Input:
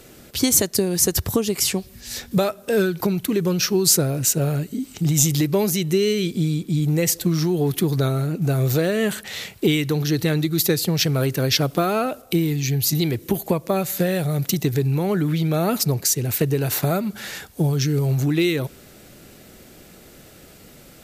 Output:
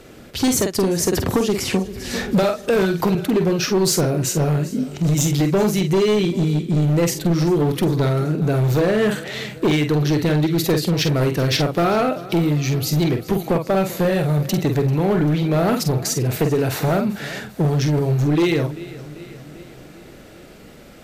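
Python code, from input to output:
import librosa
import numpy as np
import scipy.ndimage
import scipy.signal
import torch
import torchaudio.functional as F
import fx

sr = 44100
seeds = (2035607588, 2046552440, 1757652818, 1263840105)

y = fx.lowpass(x, sr, hz=2500.0, slope=6)
y = fx.doubler(y, sr, ms=47.0, db=-7)
y = fx.echo_feedback(y, sr, ms=392, feedback_pct=59, wet_db=-19.0)
y = np.clip(y, -10.0 ** (-17.0 / 20.0), 10.0 ** (-17.0 / 20.0))
y = fx.peak_eq(y, sr, hz=85.0, db=-3.0, octaves=2.0)
y = fx.band_squash(y, sr, depth_pct=70, at=(1.13, 3.15))
y = F.gain(torch.from_numpy(y), 4.5).numpy()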